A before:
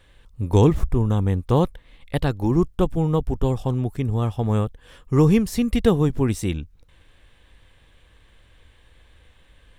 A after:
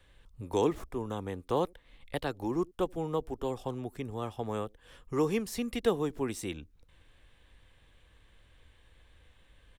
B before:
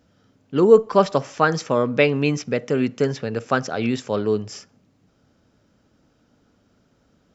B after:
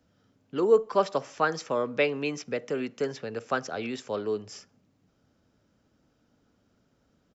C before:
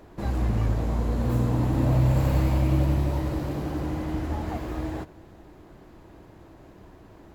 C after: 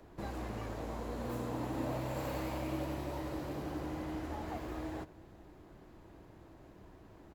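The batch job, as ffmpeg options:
-filter_complex "[0:a]acrossover=split=280|470|1400[link_01][link_02][link_03][link_04];[link_01]acompressor=threshold=-36dB:ratio=6[link_05];[link_02]aecho=1:1:80:0.0631[link_06];[link_05][link_06][link_03][link_04]amix=inputs=4:normalize=0,volume=-7dB"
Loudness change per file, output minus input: −12.0, −8.5, −14.0 LU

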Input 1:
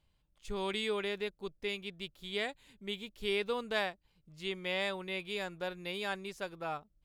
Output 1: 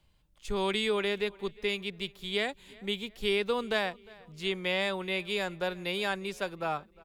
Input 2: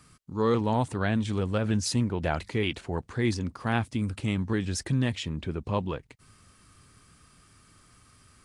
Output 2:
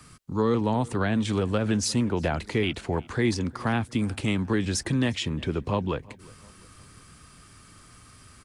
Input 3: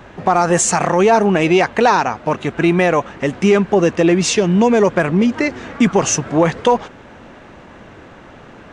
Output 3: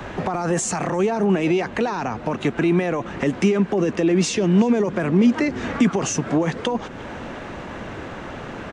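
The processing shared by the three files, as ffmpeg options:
-filter_complex "[0:a]acrossover=split=230[link_01][link_02];[link_01]acompressor=threshold=-35dB:ratio=6[link_03];[link_03][link_02]amix=inputs=2:normalize=0,alimiter=limit=-11.5dB:level=0:latency=1:release=12,acrossover=split=280[link_04][link_05];[link_05]acompressor=threshold=-32dB:ratio=4[link_06];[link_04][link_06]amix=inputs=2:normalize=0,asplit=2[link_07][link_08];[link_08]adelay=355,lowpass=frequency=4800:poles=1,volume=-23dB,asplit=2[link_09][link_10];[link_10]adelay=355,lowpass=frequency=4800:poles=1,volume=0.44,asplit=2[link_11][link_12];[link_12]adelay=355,lowpass=frequency=4800:poles=1,volume=0.44[link_13];[link_07][link_09][link_11][link_13]amix=inputs=4:normalize=0,volume=6.5dB"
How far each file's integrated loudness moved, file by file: +5.5, +2.0, −6.0 LU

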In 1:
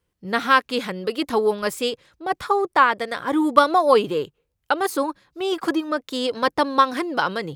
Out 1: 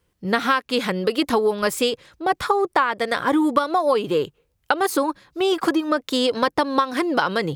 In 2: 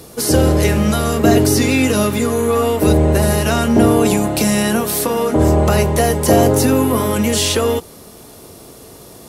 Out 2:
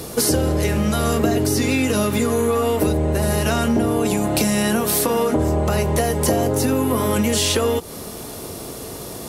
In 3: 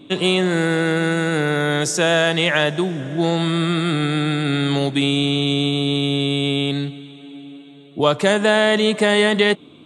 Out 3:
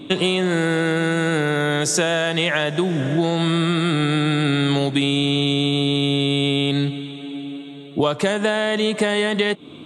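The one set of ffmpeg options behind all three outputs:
-af "acompressor=threshold=-22dB:ratio=10,volume=6.5dB"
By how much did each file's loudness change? 0.0, −4.5, −1.5 LU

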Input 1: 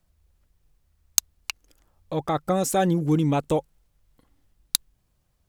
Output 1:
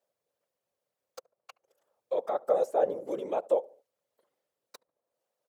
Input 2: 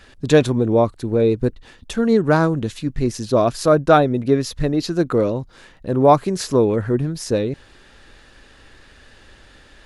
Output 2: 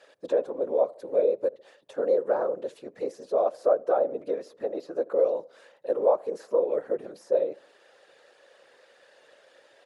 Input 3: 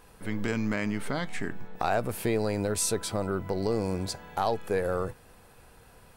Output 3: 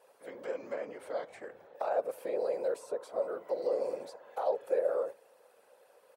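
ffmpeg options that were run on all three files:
-filter_complex "[0:a]asplit=2[link_01][link_02];[link_02]adelay=72,lowpass=frequency=890:poles=1,volume=-22dB,asplit=2[link_03][link_04];[link_04]adelay=72,lowpass=frequency=890:poles=1,volume=0.47,asplit=2[link_05][link_06];[link_06]adelay=72,lowpass=frequency=890:poles=1,volume=0.47[link_07];[link_01][link_03][link_05][link_07]amix=inputs=4:normalize=0,acrossover=split=710|1500[link_08][link_09][link_10];[link_10]acompressor=threshold=-44dB:ratio=6[link_11];[link_08][link_09][link_11]amix=inputs=3:normalize=0,afftfilt=real='hypot(re,im)*cos(2*PI*random(0))':imag='hypot(re,im)*sin(2*PI*random(1))':win_size=512:overlap=0.75,alimiter=limit=-16dB:level=0:latency=1:release=272,highpass=frequency=530:width_type=q:width=4.9,volume=-5dB"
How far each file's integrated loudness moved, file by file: −5.0, −9.0, −5.0 LU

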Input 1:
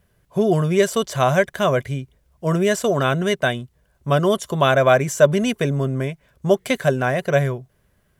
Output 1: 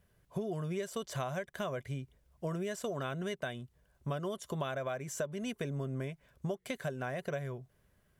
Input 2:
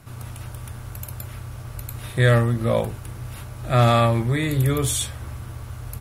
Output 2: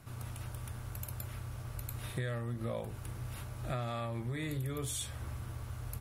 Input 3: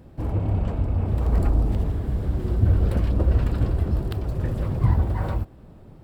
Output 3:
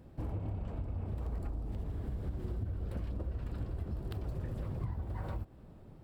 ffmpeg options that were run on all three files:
-af "acompressor=threshold=-26dB:ratio=12,volume=-7.5dB"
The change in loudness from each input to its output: −19.0, −19.5, −16.0 LU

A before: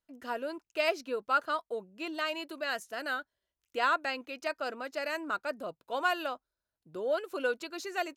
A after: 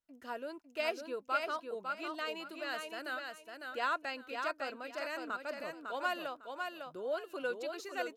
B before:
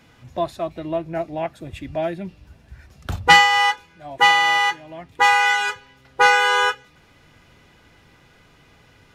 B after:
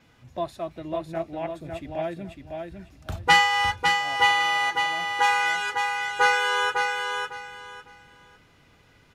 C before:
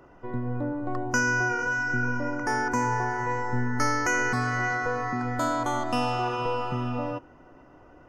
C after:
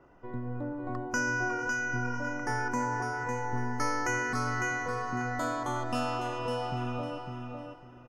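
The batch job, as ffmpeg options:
-filter_complex "[0:a]adynamicequalizer=threshold=0.00126:dfrequency=9900:dqfactor=6.1:tfrequency=9900:tqfactor=6.1:attack=5:release=100:ratio=0.375:range=2.5:mode=boostabove:tftype=bell,asplit=2[link_01][link_02];[link_02]aecho=0:1:553|1106|1659:0.562|0.129|0.0297[link_03];[link_01][link_03]amix=inputs=2:normalize=0,volume=-6dB"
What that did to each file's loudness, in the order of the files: −5.0, −6.0, −5.0 LU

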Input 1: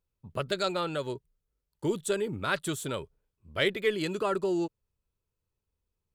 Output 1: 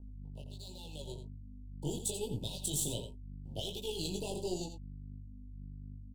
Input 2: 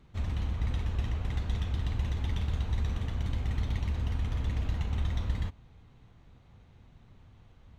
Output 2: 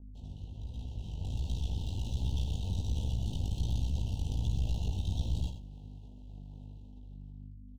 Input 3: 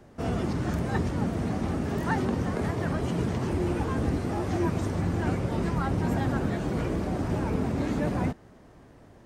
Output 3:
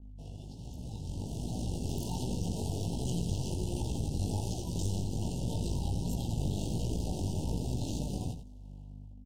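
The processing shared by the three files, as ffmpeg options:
-filter_complex "[0:a]highpass=54,highshelf=frequency=7800:gain=-5.5,acrossover=split=130|3000[link_01][link_02][link_03];[link_02]acompressor=threshold=-53dB:ratio=2[link_04];[link_01][link_04][link_03]amix=inputs=3:normalize=0,alimiter=level_in=8dB:limit=-24dB:level=0:latency=1:release=14,volume=-8dB,dynaudnorm=framelen=490:gausssize=5:maxgain=12dB,aeval=exprs='sgn(val(0))*max(abs(val(0))-0.00398,0)':channel_layout=same,aeval=exprs='val(0)+0.0112*(sin(2*PI*50*n/s)+sin(2*PI*2*50*n/s)/2+sin(2*PI*3*50*n/s)/3+sin(2*PI*4*50*n/s)/4+sin(2*PI*5*50*n/s)/5)':channel_layout=same,flanger=delay=16:depth=5.2:speed=1.3,aeval=exprs='(tanh(14.1*val(0)+0.75)-tanh(0.75))/14.1':channel_layout=same,asuperstop=centerf=1600:order=20:qfactor=0.91,asplit=2[link_05][link_06];[link_06]adelay=87.46,volume=-9dB,highshelf=frequency=4000:gain=-1.97[link_07];[link_05][link_07]amix=inputs=2:normalize=0,adynamicequalizer=threshold=0.001:dfrequency=4600:dqfactor=0.7:tfrequency=4600:tqfactor=0.7:attack=5:release=100:ratio=0.375:range=3:mode=boostabove:tftype=highshelf"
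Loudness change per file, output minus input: −8.5, −2.5, −6.5 LU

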